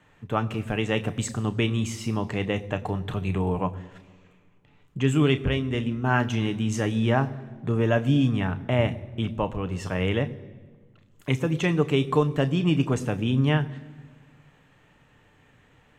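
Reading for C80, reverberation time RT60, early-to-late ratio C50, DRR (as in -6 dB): 19.0 dB, 1.6 s, 18.5 dB, 9.5 dB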